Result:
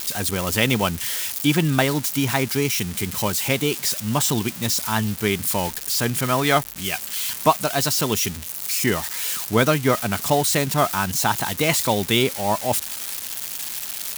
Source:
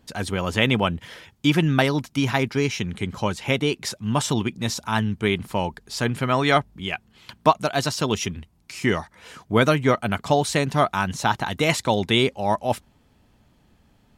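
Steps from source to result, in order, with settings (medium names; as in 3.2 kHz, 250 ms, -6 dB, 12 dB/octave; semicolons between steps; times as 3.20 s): zero-crossing glitches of -17 dBFS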